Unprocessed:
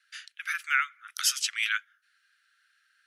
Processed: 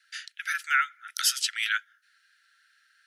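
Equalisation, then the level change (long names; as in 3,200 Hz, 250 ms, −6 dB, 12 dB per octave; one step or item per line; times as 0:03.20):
dynamic equaliser 2,300 Hz, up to −5 dB, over −43 dBFS, Q 2.4
dynamic equaliser 6,200 Hz, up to −6 dB, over −44 dBFS, Q 1.9
Chebyshev high-pass with heavy ripple 1,300 Hz, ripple 3 dB
+5.5 dB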